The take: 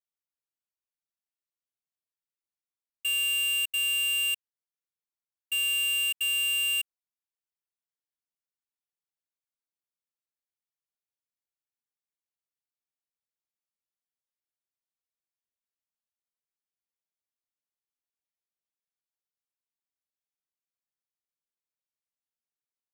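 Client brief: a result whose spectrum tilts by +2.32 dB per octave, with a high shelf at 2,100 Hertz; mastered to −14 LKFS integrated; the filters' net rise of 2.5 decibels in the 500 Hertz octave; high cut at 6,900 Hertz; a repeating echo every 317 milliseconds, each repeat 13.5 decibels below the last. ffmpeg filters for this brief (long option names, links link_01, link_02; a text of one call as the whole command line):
ffmpeg -i in.wav -af "lowpass=6900,equalizer=frequency=500:width_type=o:gain=4,highshelf=frequency=2100:gain=-8,aecho=1:1:317|634:0.211|0.0444,volume=18dB" out.wav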